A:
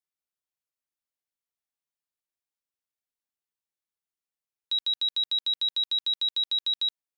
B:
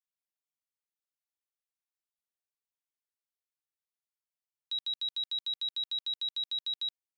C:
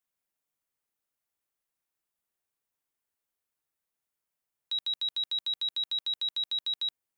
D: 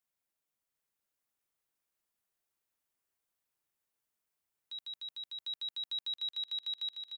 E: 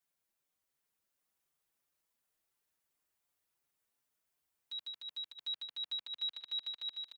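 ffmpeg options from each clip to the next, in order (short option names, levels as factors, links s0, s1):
-af "highpass=f=890:p=1,volume=0.447"
-af "equalizer=f=4400:w=0.78:g=-6,volume=2.66"
-filter_complex "[0:a]alimiter=level_in=4.22:limit=0.0631:level=0:latency=1:release=246,volume=0.237,asplit=2[s0][s1];[s1]aecho=0:1:750|1200|1470|1632|1729:0.631|0.398|0.251|0.158|0.1[s2];[s0][s2]amix=inputs=2:normalize=0,volume=0.794"
-filter_complex "[0:a]acrossover=split=3600[s0][s1];[s1]acompressor=threshold=0.00251:ratio=6[s2];[s0][s2]amix=inputs=2:normalize=0,asplit=2[s3][s4];[s4]adelay=5.5,afreqshift=2.8[s5];[s3][s5]amix=inputs=2:normalize=1,volume=1.78"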